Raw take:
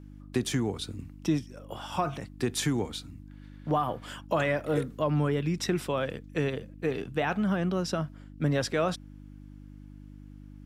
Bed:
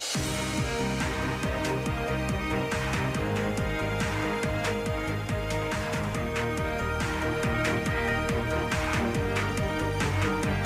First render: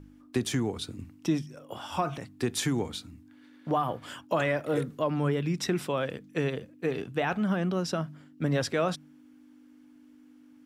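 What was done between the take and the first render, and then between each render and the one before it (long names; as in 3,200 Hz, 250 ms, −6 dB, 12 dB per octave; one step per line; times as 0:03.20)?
hum removal 50 Hz, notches 4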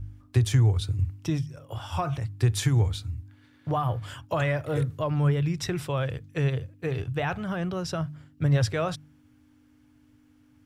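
low shelf with overshoot 150 Hz +12.5 dB, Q 3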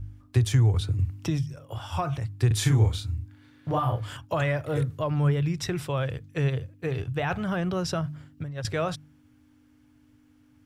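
0:00.74–0:01.54: multiband upward and downward compressor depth 70%
0:02.47–0:04.17: double-tracking delay 37 ms −3 dB
0:07.30–0:08.65: compressor whose output falls as the input rises −29 dBFS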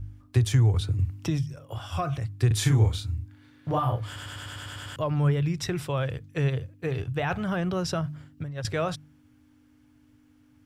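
0:01.80–0:02.49: Butterworth band-reject 900 Hz, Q 6.9
0:04.06: stutter in place 0.10 s, 9 plays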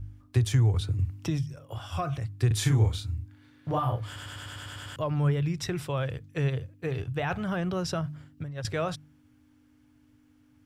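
level −2 dB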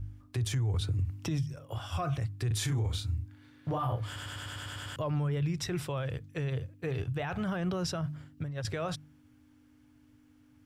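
brickwall limiter −24 dBFS, peak gain reduction 11.5 dB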